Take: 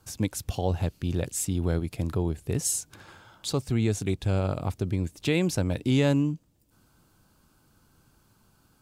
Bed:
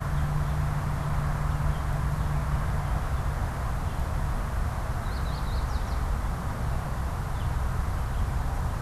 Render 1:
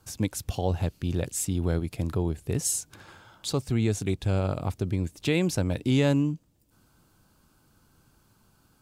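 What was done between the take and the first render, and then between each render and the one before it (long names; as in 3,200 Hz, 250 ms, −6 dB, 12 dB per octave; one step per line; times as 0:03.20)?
no processing that can be heard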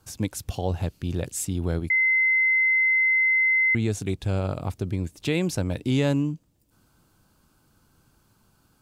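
0:01.90–0:03.75: beep over 2,060 Hz −17.5 dBFS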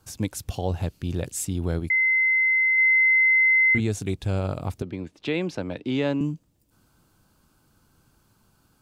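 0:02.75–0:03.80: double-tracking delay 30 ms −4.5 dB
0:04.82–0:06.21: three-way crossover with the lows and the highs turned down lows −13 dB, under 190 Hz, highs −22 dB, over 4,600 Hz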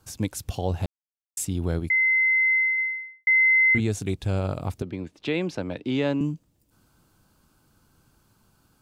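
0:00.86–0:01.37: silence
0:02.53–0:03.27: fade out and dull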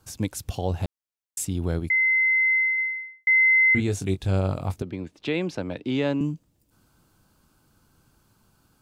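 0:02.94–0:04.78: double-tracking delay 21 ms −8 dB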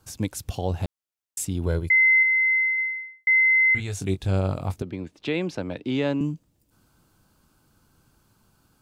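0:01.66–0:02.23: comb filter 2 ms, depth 61%
0:03.40–0:03.99: parametric band 290 Hz −14.5 dB 1.6 octaves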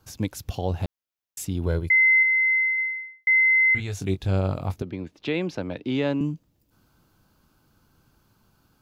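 parametric band 8,600 Hz −9 dB 0.47 octaves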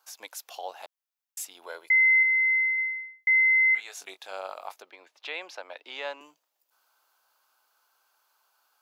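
high-pass filter 700 Hz 24 dB per octave
parametric band 2,900 Hz −2.5 dB 2.8 octaves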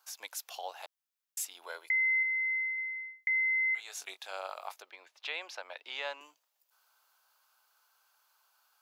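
high-pass filter 840 Hz 6 dB per octave
dynamic equaliser 2,000 Hz, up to −8 dB, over −36 dBFS, Q 1.2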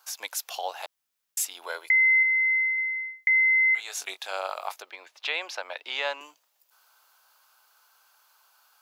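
level +8.5 dB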